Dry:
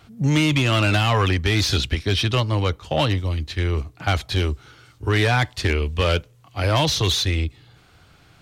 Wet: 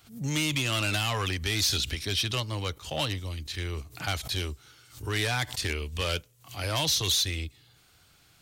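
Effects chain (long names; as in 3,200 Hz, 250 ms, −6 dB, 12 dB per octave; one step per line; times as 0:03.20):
first-order pre-emphasis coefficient 0.8
background raised ahead of every attack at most 140 dB per second
level +2 dB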